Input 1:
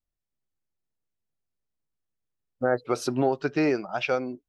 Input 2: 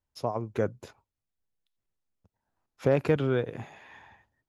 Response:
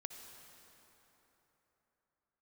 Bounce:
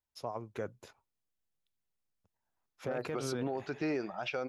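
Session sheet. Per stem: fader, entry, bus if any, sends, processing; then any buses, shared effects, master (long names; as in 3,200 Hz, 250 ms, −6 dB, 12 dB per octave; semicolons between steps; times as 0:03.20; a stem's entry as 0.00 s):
−5.0 dB, 0.25 s, no send, no processing
−4.5 dB, 0.00 s, no send, low-shelf EQ 470 Hz −7.5 dB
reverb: not used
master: brickwall limiter −26.5 dBFS, peak gain reduction 11.5 dB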